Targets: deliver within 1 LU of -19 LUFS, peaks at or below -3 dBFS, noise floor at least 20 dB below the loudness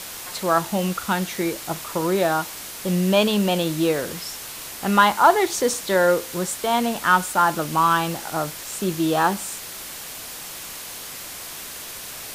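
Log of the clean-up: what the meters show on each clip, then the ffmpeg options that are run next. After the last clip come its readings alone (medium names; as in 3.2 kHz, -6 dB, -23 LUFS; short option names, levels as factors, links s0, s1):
noise floor -36 dBFS; noise floor target -42 dBFS; loudness -21.5 LUFS; peak level -2.5 dBFS; loudness target -19.0 LUFS
-> -af "afftdn=nr=6:nf=-36"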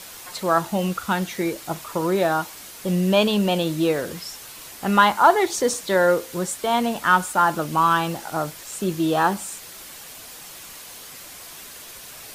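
noise floor -41 dBFS; noise floor target -42 dBFS
-> -af "afftdn=nr=6:nf=-41"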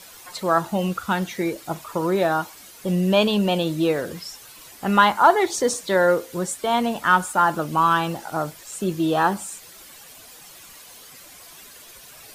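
noise floor -45 dBFS; loudness -21.5 LUFS; peak level -2.5 dBFS; loudness target -19.0 LUFS
-> -af "volume=1.33,alimiter=limit=0.708:level=0:latency=1"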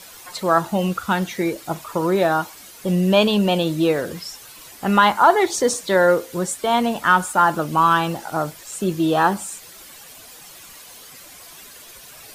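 loudness -19.5 LUFS; peak level -3.0 dBFS; noise floor -43 dBFS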